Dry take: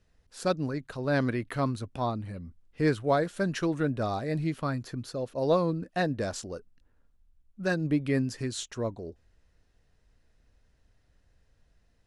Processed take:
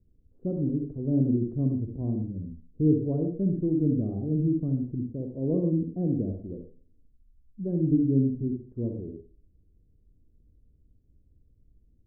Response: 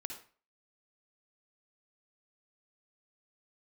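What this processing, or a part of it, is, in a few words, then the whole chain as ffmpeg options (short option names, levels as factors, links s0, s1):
next room: -filter_complex "[0:a]lowpass=f=360:w=0.5412,lowpass=f=360:w=1.3066[s0];[1:a]atrim=start_sample=2205[s1];[s0][s1]afir=irnorm=-1:irlink=0,volume=2.24"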